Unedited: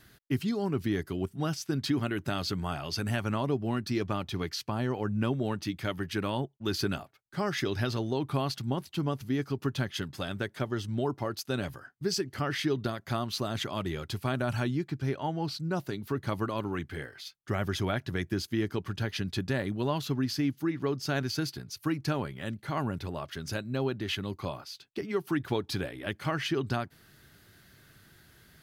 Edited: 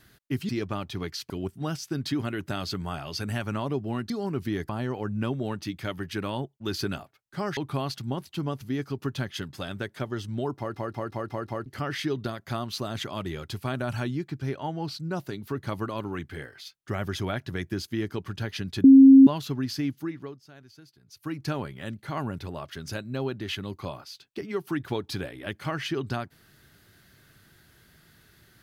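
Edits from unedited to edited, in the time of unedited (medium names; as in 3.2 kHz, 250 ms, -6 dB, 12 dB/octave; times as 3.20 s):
0.49–1.08 s: swap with 3.88–4.69 s
7.57–8.17 s: delete
11.18 s: stutter in place 0.18 s, 6 plays
19.44–19.87 s: bleep 269 Hz -8 dBFS
20.53–22.08 s: dip -20.5 dB, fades 0.48 s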